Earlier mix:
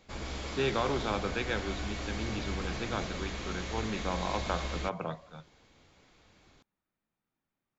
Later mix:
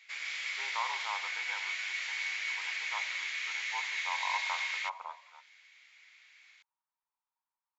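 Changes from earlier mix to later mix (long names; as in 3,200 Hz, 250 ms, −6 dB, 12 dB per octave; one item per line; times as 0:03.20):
speech: add four-pole ladder high-pass 890 Hz, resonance 80%
background: add high-pass with resonance 2,100 Hz, resonance Q 4.2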